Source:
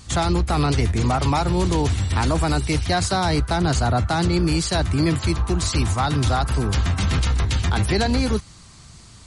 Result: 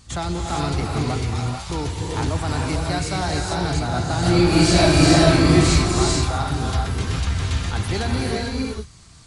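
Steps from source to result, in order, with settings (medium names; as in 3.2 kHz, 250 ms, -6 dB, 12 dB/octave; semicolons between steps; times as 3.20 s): 1.14–1.70 s: amplifier tone stack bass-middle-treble 10-0-10; 4.19–5.70 s: reverb throw, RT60 0.97 s, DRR -10.5 dB; gated-style reverb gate 480 ms rising, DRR -1.5 dB; trim -6 dB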